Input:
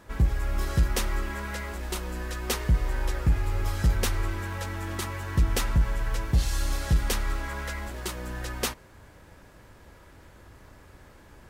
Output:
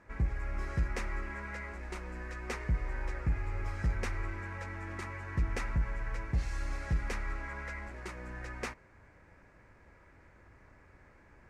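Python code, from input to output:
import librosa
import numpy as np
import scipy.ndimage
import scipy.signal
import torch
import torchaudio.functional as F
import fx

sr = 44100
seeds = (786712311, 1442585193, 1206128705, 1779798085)

y = scipy.signal.sosfilt(scipy.signal.cheby1(2, 1.0, 6400.0, 'lowpass', fs=sr, output='sos'), x)
y = fx.high_shelf_res(y, sr, hz=2700.0, db=-6.0, q=3.0)
y = y * 10.0 ** (-7.5 / 20.0)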